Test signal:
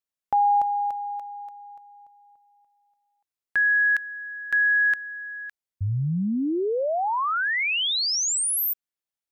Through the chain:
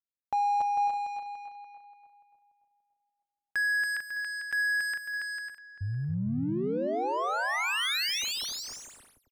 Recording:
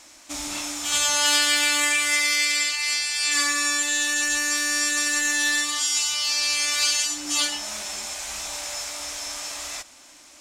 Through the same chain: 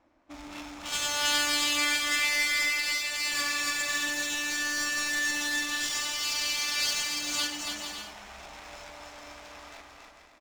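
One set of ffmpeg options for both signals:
-af "adynamicsmooth=sensitivity=4.5:basefreq=870,aecho=1:1:280|448|548.8|609.3|645.6:0.631|0.398|0.251|0.158|0.1,volume=-7dB"

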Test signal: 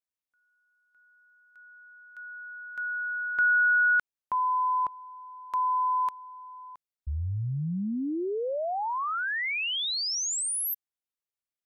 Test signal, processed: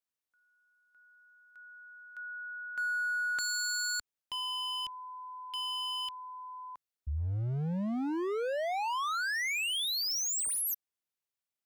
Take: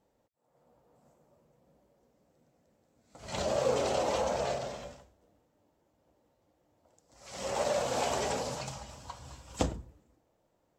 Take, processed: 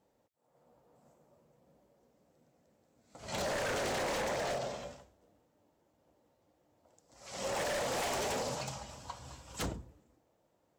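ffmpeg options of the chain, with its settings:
-af "highpass=f=70:p=1,aeval=exprs='0.0335*(abs(mod(val(0)/0.0335+3,4)-2)-1)':c=same"

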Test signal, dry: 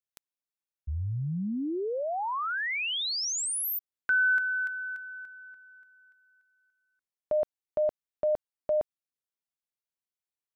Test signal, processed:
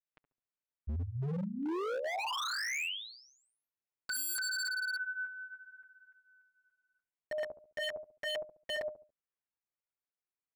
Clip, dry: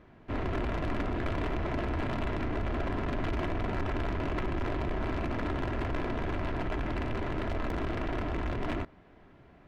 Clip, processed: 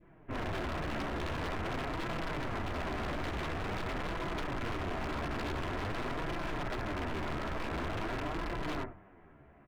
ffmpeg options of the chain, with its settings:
-filter_complex "[0:a]lowpass=f=2.6k:w=0.5412,lowpass=f=2.6k:w=1.3066,asplit=2[a][b];[b]adelay=70,lowpass=f=860:p=1,volume=-10dB,asplit=2[c][d];[d]adelay=70,lowpass=f=860:p=1,volume=0.35,asplit=2[e][f];[f]adelay=70,lowpass=f=860:p=1,volume=0.35,asplit=2[g][h];[h]adelay=70,lowpass=f=860:p=1,volume=0.35[i];[a][c][e][g][i]amix=inputs=5:normalize=0,adynamicequalizer=threshold=0.00708:dfrequency=1200:dqfactor=0.73:tfrequency=1200:tqfactor=0.73:attack=5:release=100:ratio=0.438:range=3:mode=boostabove:tftype=bell,flanger=delay=5.9:depth=8.2:regen=1:speed=0.47:shape=sinusoidal,aeval=exprs='0.0282*(abs(mod(val(0)/0.0282+3,4)-2)-1)':c=same"

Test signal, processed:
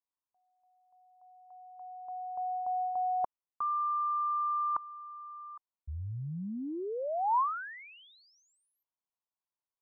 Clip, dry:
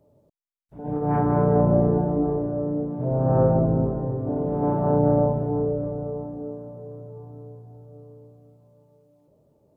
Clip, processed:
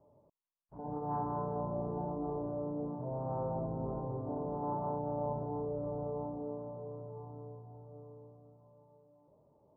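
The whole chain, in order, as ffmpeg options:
-af "areverse,acompressor=threshold=-29dB:ratio=6,areverse,lowpass=f=1k:t=q:w=4,volume=-7.5dB"

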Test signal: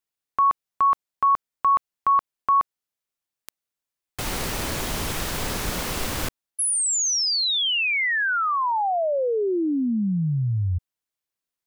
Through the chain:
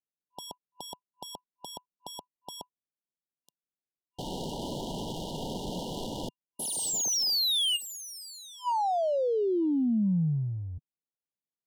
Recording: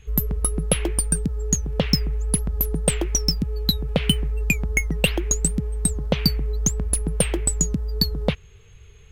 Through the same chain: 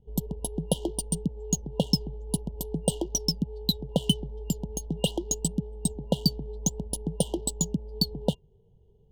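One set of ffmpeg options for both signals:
-af "adynamicsmooth=sensitivity=7:basefreq=660,afftfilt=real='re*(1-between(b*sr/4096,1000,2800))':imag='im*(1-between(b*sr/4096,1000,2800))':win_size=4096:overlap=0.75,lowshelf=f=120:t=q:w=1.5:g=-8.5,volume=-4.5dB"

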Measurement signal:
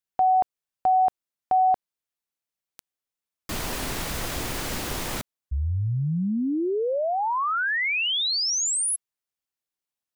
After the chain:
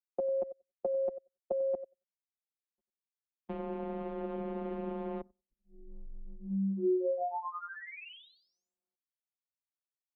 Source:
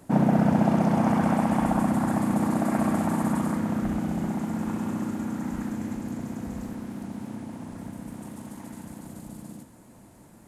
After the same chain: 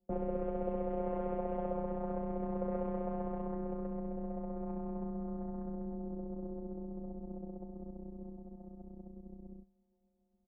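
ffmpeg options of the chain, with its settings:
-filter_complex "[0:a]afftfilt=real='hypot(re,im)*cos(PI*b)':imag='0':win_size=1024:overlap=0.75,asplit=2[a][b];[b]aecho=0:1:93|186|279:0.282|0.062|0.0136[c];[a][c]amix=inputs=2:normalize=0,anlmdn=6.31,acrossover=split=140|2100[d][e][f];[d]acompressor=threshold=-43dB:ratio=3[g];[e]acompressor=threshold=-39dB:ratio=3[h];[f]acompressor=threshold=-37dB:ratio=5[i];[g][h][i]amix=inputs=3:normalize=0,firequalizer=gain_entry='entry(280,0);entry(410,12);entry(1800,-11)':delay=0.05:min_phase=1,highpass=f=210:t=q:w=0.5412,highpass=f=210:t=q:w=1.307,lowpass=f=3.1k:t=q:w=0.5176,lowpass=f=3.1k:t=q:w=0.7071,lowpass=f=3.1k:t=q:w=1.932,afreqshift=-150,volume=-1.5dB"

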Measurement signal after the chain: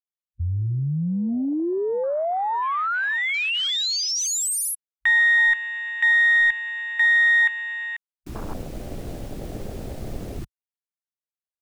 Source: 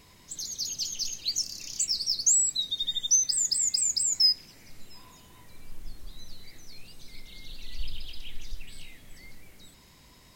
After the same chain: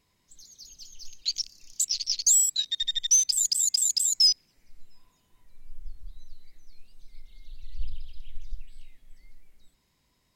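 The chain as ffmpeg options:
-af "aeval=exprs='0.266*(cos(1*acos(clip(val(0)/0.266,-1,1)))-cos(1*PI/2))+0.0133*(cos(2*acos(clip(val(0)/0.266,-1,1)))-cos(2*PI/2))+0.0596*(cos(5*acos(clip(val(0)/0.266,-1,1)))-cos(5*PI/2))+0.0376*(cos(7*acos(clip(val(0)/0.266,-1,1)))-cos(7*PI/2))':c=same,afwtdn=0.0355"

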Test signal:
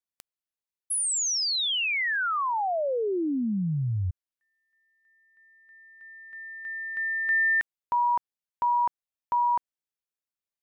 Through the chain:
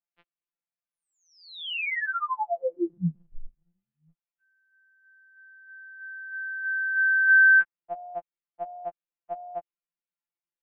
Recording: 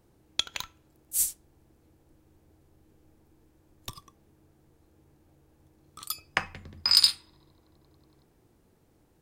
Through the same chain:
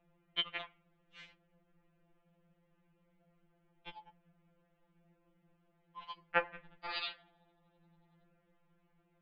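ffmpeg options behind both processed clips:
-af "highpass=f=240:t=q:w=0.5412,highpass=f=240:t=q:w=1.307,lowpass=f=3.2k:t=q:w=0.5176,lowpass=f=3.2k:t=q:w=0.7071,lowpass=f=3.2k:t=q:w=1.932,afreqshift=-250,afftfilt=real='re*2.83*eq(mod(b,8),0)':imag='im*2.83*eq(mod(b,8),0)':win_size=2048:overlap=0.75"

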